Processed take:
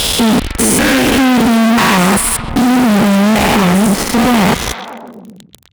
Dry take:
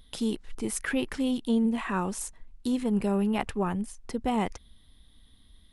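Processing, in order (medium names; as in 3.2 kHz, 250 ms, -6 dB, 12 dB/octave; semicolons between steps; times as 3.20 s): spectrogram pixelated in time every 200 ms; 2.15–2.71 s: static phaser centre 2.8 kHz, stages 4; fuzz box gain 58 dB, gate -50 dBFS; high-pass 42 Hz; repeats whose band climbs or falls 130 ms, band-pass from 2.9 kHz, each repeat -0.7 oct, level -6.5 dB; trim +4.5 dB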